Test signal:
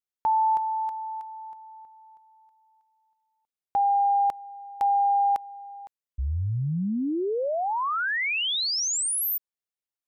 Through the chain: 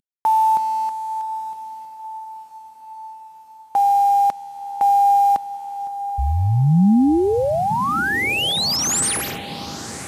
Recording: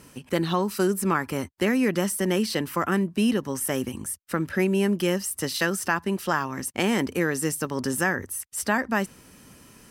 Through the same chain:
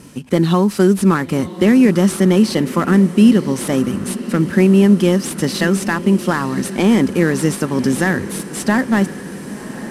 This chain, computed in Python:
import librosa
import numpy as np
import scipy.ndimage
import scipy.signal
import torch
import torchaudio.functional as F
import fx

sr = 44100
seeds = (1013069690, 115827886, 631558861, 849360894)

p1 = fx.cvsd(x, sr, bps=64000)
p2 = fx.peak_eq(p1, sr, hz=200.0, db=8.5, octaves=1.8)
p3 = p2 + fx.echo_diffused(p2, sr, ms=1032, feedback_pct=70, wet_db=-15.0, dry=0)
y = p3 * librosa.db_to_amplitude(5.5)